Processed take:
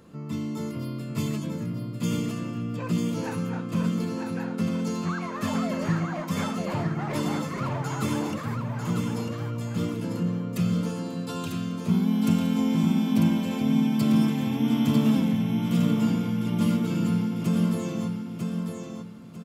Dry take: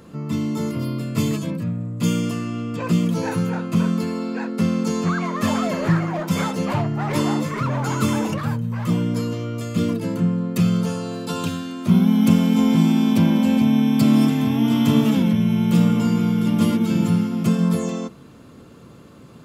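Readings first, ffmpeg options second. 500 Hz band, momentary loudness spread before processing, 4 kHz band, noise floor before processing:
−6.5 dB, 10 LU, −6.0 dB, −44 dBFS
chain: -af "aecho=1:1:947|1894|2841|3788:0.562|0.163|0.0473|0.0137,volume=-7.5dB"

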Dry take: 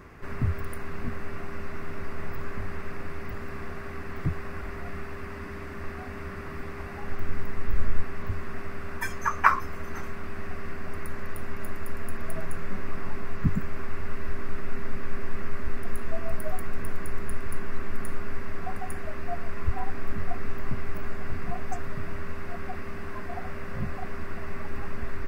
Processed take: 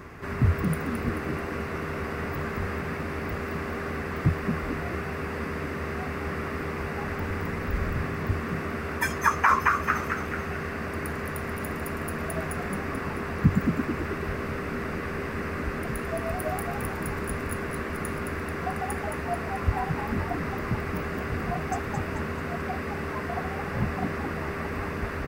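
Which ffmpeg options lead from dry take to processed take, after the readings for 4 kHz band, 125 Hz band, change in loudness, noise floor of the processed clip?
can't be measured, +5.0 dB, +5.5 dB, −33 dBFS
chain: -filter_complex "[0:a]highpass=54,asplit=2[link_01][link_02];[link_02]asplit=6[link_03][link_04][link_05][link_06][link_07][link_08];[link_03]adelay=218,afreqshift=74,volume=-6dB[link_09];[link_04]adelay=436,afreqshift=148,volume=-11.8dB[link_10];[link_05]adelay=654,afreqshift=222,volume=-17.7dB[link_11];[link_06]adelay=872,afreqshift=296,volume=-23.5dB[link_12];[link_07]adelay=1090,afreqshift=370,volume=-29.4dB[link_13];[link_08]adelay=1308,afreqshift=444,volume=-35.2dB[link_14];[link_09][link_10][link_11][link_12][link_13][link_14]amix=inputs=6:normalize=0[link_15];[link_01][link_15]amix=inputs=2:normalize=0,alimiter=level_in=13.5dB:limit=-1dB:release=50:level=0:latency=1,volume=-8dB"

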